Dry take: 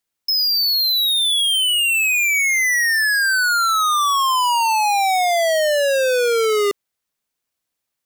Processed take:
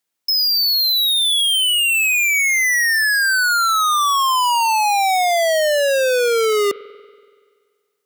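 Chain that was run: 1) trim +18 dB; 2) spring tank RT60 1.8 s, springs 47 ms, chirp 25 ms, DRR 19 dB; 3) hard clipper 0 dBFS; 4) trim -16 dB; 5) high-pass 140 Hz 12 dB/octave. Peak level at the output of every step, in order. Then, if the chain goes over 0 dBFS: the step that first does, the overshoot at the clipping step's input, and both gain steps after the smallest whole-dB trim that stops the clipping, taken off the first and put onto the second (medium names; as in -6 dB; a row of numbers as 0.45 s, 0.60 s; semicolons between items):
+1.0 dBFS, +4.0 dBFS, 0.0 dBFS, -16.0 dBFS, -11.0 dBFS; step 1, 4.0 dB; step 1 +14 dB, step 4 -12 dB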